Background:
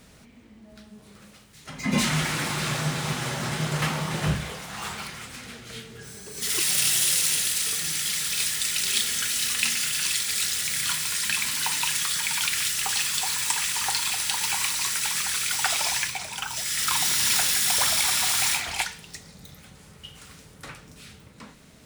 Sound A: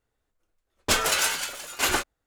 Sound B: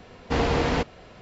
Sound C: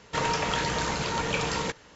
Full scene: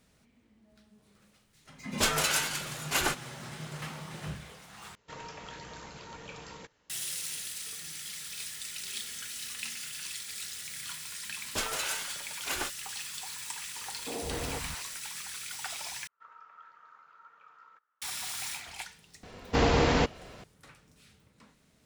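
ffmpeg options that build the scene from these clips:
-filter_complex "[1:a]asplit=2[a][b];[3:a]asplit=2[c][d];[2:a]asplit=2[e][f];[0:a]volume=-14dB[g];[e]acrossover=split=190|950[h][i][j];[h]adelay=160[k];[j]adelay=230[l];[k][i][l]amix=inputs=3:normalize=0[m];[d]bandpass=f=1.3k:t=q:w=16:csg=0[n];[f]highshelf=f=6.1k:g=7.5[o];[g]asplit=3[p][q][r];[p]atrim=end=4.954[s];[c]atrim=end=1.95,asetpts=PTS-STARTPTS,volume=-17.5dB[t];[q]atrim=start=6.896:end=16.074[u];[n]atrim=end=1.95,asetpts=PTS-STARTPTS,volume=-11.5dB[v];[r]atrim=start=18.016[w];[a]atrim=end=2.26,asetpts=PTS-STARTPTS,volume=-4.5dB,afade=t=in:d=0.004:c=hsin,afade=t=out:st=2.256:d=0.004:c=hsin,adelay=1120[x];[b]atrim=end=2.26,asetpts=PTS-STARTPTS,volume=-10.5dB,afade=t=in:d=0.004:c=hsin,afade=t=out:st=2.256:d=0.004:c=hsin,adelay=10670[y];[m]atrim=end=1.21,asetpts=PTS-STARTPTS,volume=-12dB,afade=t=in:d=0.004:c=hsin,afade=t=out:st=1.206:d=0.004:c=hsin,adelay=13760[z];[o]atrim=end=1.21,asetpts=PTS-STARTPTS,volume=-1dB,afade=t=in:d=0.004:c=hsin,afade=t=out:st=1.206:d=0.004:c=hsin,adelay=19230[aa];[s][t]acrossfade=d=0.004:c1=hsin:c2=hsin[ab];[ab][u]acrossfade=d=0.004:c1=hsin:c2=hsin[ac];[ac][v]acrossfade=d=0.004:c1=hsin:c2=hsin[ad];[ad][w]acrossfade=d=0.004:c1=hsin:c2=hsin[ae];[ae][x][y][z][aa]amix=inputs=5:normalize=0"

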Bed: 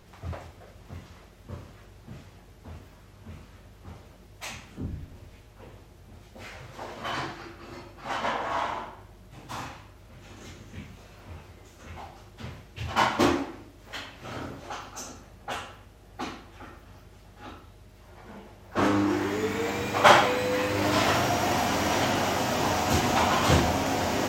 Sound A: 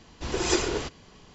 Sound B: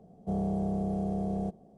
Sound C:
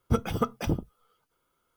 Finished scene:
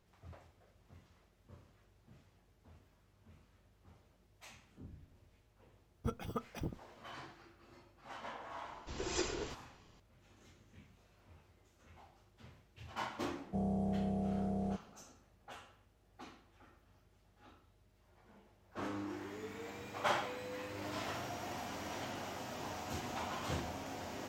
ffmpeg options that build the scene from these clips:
-filter_complex "[0:a]volume=-18dB[a];[2:a]equalizer=f=360:w=7:g=-5.5[b];[3:a]atrim=end=1.76,asetpts=PTS-STARTPTS,volume=-13.5dB,afade=t=in:d=0.004:c=hsin,afade=t=out:st=1.756:d=0.004:c=hsin,adelay=5940[c];[1:a]atrim=end=1.34,asetpts=PTS-STARTPTS,volume=-12.5dB,afade=t=in:d=0.004:c=hsin,afade=t=out:st=1.336:d=0.004:c=hsin,adelay=381906S[d];[b]atrim=end=1.77,asetpts=PTS-STARTPTS,volume=-5dB,afade=t=in:d=0.004:c=hsin,afade=t=out:st=1.766:d=0.004:c=hsin,adelay=13260[e];[a][c][d][e]amix=inputs=4:normalize=0"

